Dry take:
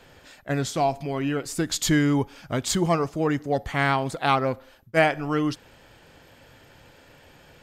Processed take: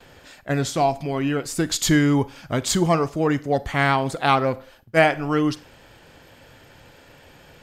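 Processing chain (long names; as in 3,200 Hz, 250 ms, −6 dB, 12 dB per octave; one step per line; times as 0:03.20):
noise gate with hold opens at −44 dBFS
four-comb reverb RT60 0.37 s, combs from 33 ms, DRR 18 dB
level +3 dB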